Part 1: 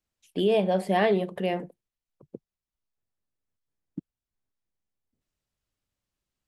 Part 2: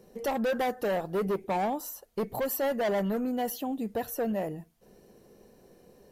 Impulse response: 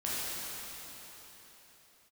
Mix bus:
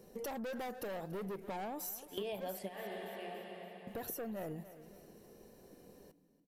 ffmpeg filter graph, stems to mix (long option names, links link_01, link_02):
-filter_complex "[0:a]lowshelf=frequency=450:gain=-10,adelay=1750,volume=-0.5dB,asplit=2[link_01][link_02];[link_02]volume=-21.5dB[link_03];[1:a]aeval=exprs='(tanh(22.4*val(0)+0.2)-tanh(0.2))/22.4':channel_layout=same,alimiter=level_in=6.5dB:limit=-24dB:level=0:latency=1:release=32,volume=-6.5dB,volume=-2dB,asplit=3[link_04][link_05][link_06];[link_04]atrim=end=2.59,asetpts=PTS-STARTPTS,afade=type=out:start_time=2.586:duration=0.004:curve=hsin[link_07];[link_05]atrim=start=2.59:end=3.87,asetpts=PTS-STARTPTS,volume=0[link_08];[link_06]atrim=start=3.87,asetpts=PTS-STARTPTS,afade=type=in:duration=0.004:curve=hsin[link_09];[link_07][link_08][link_09]concat=n=3:v=0:a=1,asplit=3[link_10][link_11][link_12];[link_11]volume=-18dB[link_13];[link_12]apad=whole_len=362579[link_14];[link_01][link_14]sidechaingate=range=-22dB:threshold=-53dB:ratio=16:detection=peak[link_15];[2:a]atrim=start_sample=2205[link_16];[link_03][link_16]afir=irnorm=-1:irlink=0[link_17];[link_13]aecho=0:1:285|570|855|1140|1425|1710:1|0.44|0.194|0.0852|0.0375|0.0165[link_18];[link_15][link_10][link_17][link_18]amix=inputs=4:normalize=0,highshelf=frequency=7500:gain=5,acompressor=threshold=-39dB:ratio=6"